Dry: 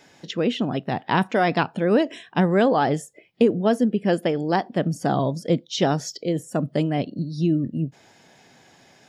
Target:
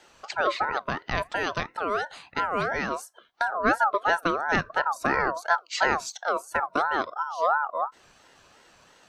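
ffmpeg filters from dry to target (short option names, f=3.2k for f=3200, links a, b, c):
-filter_complex "[0:a]asettb=1/sr,asplit=3[a][b][c];[a]atrim=end=0.914[d];[b]atrim=start=0.91:end=3.52,asetpts=PTS-STARTPTS,afade=t=in:d=0.004:c=qsin,afade=t=out:st=2.606:d=0.004:c=qsin,acrossover=split=120|3000[e][f][g];[f]acompressor=threshold=-27dB:ratio=2[h];[e][h][g]amix=inputs=3:normalize=0[i];[c]atrim=start=3.516[j];[d][i]acrossfade=d=0.004:c1=hsin:c2=qsin[k];[k][j]acrossfade=d=0.004:c1=qsin:c2=hsin,aeval=exprs='val(0)*sin(2*PI*1000*n/s+1000*0.2/2.9*sin(2*PI*2.9*n/s))':c=same"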